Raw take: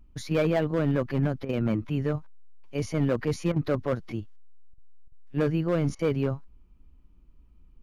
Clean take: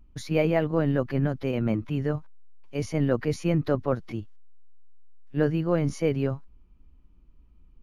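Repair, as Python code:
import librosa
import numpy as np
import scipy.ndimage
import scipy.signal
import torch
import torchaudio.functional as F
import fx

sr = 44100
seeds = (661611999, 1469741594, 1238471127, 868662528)

y = fx.fix_declip(x, sr, threshold_db=-18.0)
y = fx.fix_interpolate(y, sr, at_s=(1.45, 3.52, 4.74, 5.08, 5.95), length_ms=40.0)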